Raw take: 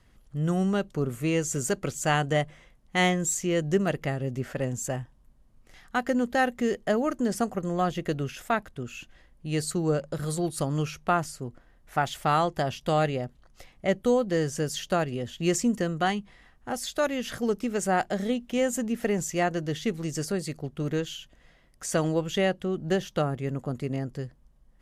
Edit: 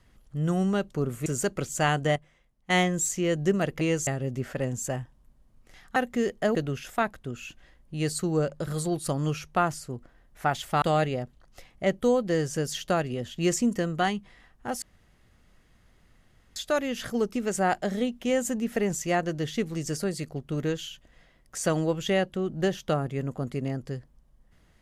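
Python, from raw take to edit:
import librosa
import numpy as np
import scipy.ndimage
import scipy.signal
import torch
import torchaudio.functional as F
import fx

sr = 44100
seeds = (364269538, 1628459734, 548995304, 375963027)

y = fx.edit(x, sr, fx.move(start_s=1.26, length_s=0.26, to_s=4.07),
    fx.clip_gain(start_s=2.42, length_s=0.54, db=-10.0),
    fx.cut(start_s=5.96, length_s=0.45),
    fx.cut(start_s=7.0, length_s=1.07),
    fx.cut(start_s=12.34, length_s=0.5),
    fx.insert_room_tone(at_s=16.84, length_s=1.74), tone=tone)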